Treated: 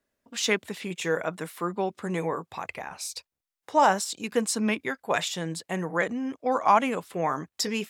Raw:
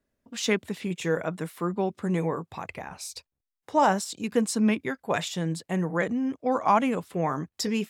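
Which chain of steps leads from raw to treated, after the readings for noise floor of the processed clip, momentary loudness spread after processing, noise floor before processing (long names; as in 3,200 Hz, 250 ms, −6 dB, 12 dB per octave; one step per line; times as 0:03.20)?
below −85 dBFS, 14 LU, below −85 dBFS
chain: low-shelf EQ 310 Hz −11 dB
level +3 dB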